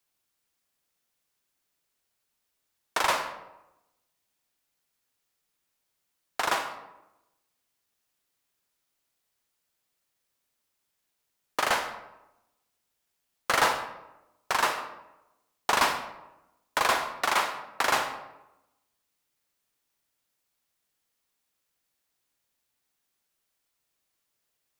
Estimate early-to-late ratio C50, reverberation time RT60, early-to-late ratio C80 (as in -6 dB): 8.5 dB, 0.95 s, 10.5 dB